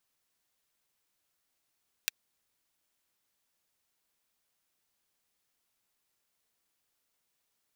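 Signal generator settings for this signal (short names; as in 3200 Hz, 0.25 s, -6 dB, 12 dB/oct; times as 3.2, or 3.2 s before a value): closed hi-hat, high-pass 2100 Hz, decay 0.02 s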